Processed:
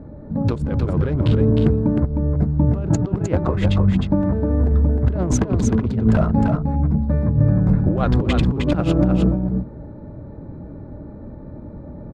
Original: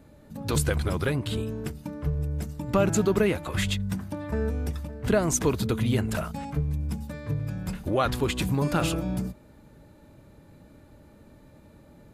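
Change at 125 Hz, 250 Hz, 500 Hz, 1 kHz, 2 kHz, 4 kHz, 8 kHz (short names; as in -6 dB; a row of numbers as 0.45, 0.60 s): +11.0, +10.5, +4.0, +3.0, -1.0, -1.5, -3.5 dB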